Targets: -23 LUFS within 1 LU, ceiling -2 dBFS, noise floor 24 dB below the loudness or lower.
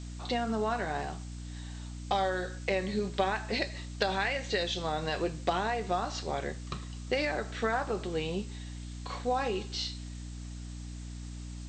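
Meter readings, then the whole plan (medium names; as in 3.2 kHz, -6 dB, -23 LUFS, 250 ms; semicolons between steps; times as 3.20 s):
hum 60 Hz; highest harmonic 300 Hz; hum level -39 dBFS; noise floor -42 dBFS; noise floor target -58 dBFS; loudness -33.5 LUFS; peak level -16.0 dBFS; loudness target -23.0 LUFS
-> hum notches 60/120/180/240/300 Hz; noise reduction 16 dB, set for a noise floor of -42 dBFS; trim +10.5 dB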